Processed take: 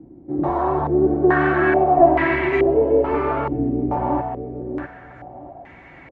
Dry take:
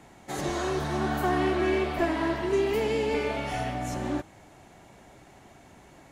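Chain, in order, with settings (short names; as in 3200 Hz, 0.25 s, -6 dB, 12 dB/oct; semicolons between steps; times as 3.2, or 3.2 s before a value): notch comb 210 Hz; on a send: feedback echo 0.647 s, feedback 24%, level -7 dB; on the sum: stepped low-pass 2.3 Hz 320–2100 Hz; gain +6 dB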